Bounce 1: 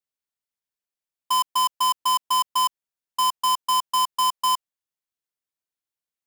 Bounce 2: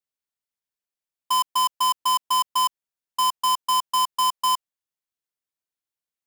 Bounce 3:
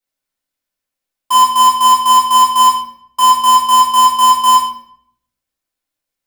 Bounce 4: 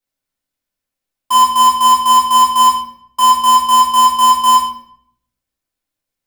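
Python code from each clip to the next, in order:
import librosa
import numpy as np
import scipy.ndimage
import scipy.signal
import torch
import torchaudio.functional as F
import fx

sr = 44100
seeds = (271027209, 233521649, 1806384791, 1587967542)

y1 = x
y2 = fx.room_shoebox(y1, sr, seeds[0], volume_m3=140.0, walls='mixed', distance_m=2.1)
y2 = F.gain(torch.from_numpy(y2), 3.0).numpy()
y3 = fx.low_shelf(y2, sr, hz=280.0, db=6.5)
y3 = F.gain(torch.from_numpy(y3), -1.0).numpy()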